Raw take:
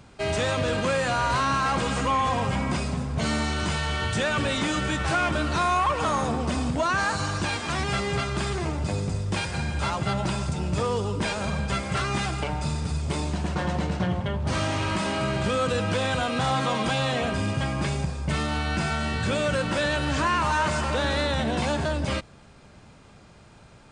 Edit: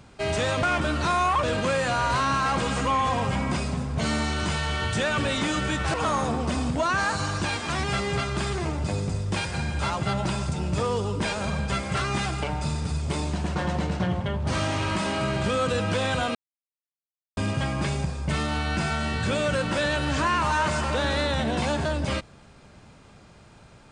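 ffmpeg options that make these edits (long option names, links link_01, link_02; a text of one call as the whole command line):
ffmpeg -i in.wav -filter_complex "[0:a]asplit=6[link_01][link_02][link_03][link_04][link_05][link_06];[link_01]atrim=end=0.632[link_07];[link_02]atrim=start=5.138:end=5.942[link_08];[link_03]atrim=start=0.628:end=5.142[link_09];[link_04]atrim=start=5.938:end=16.35,asetpts=PTS-STARTPTS,afade=type=out:start_time=10.408:duration=0.004:curve=hsin[link_10];[link_05]atrim=start=16.35:end=17.37,asetpts=PTS-STARTPTS,volume=0[link_11];[link_06]atrim=start=17.37,asetpts=PTS-STARTPTS,afade=type=in:duration=0.004:curve=hsin[link_12];[link_07][link_08]acrossfade=duration=0.004:curve1=hsin:curve2=hsin[link_13];[link_13][link_09]acrossfade=duration=0.004:curve1=hsin:curve2=hsin[link_14];[link_10][link_11][link_12]concat=n=3:v=0:a=1[link_15];[link_14][link_15]acrossfade=duration=0.004:curve1=hsin:curve2=hsin" out.wav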